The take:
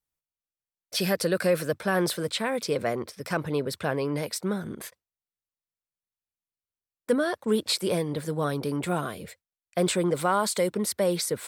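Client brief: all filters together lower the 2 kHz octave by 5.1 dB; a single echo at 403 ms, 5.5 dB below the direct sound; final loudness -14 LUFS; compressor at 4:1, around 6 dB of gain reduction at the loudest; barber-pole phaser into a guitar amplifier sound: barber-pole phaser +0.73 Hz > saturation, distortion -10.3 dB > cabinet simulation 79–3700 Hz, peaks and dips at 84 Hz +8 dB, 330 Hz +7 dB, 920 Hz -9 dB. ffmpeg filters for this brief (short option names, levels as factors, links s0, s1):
-filter_complex "[0:a]equalizer=f=2000:t=o:g=-6.5,acompressor=threshold=0.0501:ratio=4,aecho=1:1:403:0.531,asplit=2[s0][s1];[s1]afreqshift=0.73[s2];[s0][s2]amix=inputs=2:normalize=1,asoftclip=threshold=0.0251,highpass=79,equalizer=f=84:t=q:w=4:g=8,equalizer=f=330:t=q:w=4:g=7,equalizer=f=920:t=q:w=4:g=-9,lowpass=f=3700:w=0.5412,lowpass=f=3700:w=1.3066,volume=15"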